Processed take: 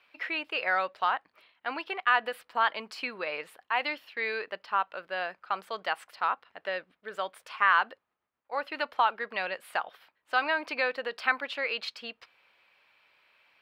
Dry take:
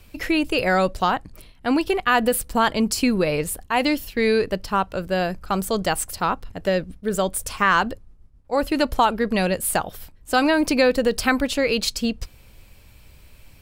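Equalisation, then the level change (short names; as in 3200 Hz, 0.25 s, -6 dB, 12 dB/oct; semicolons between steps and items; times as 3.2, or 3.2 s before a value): HPF 1100 Hz 12 dB/oct; air absorption 380 m; 0.0 dB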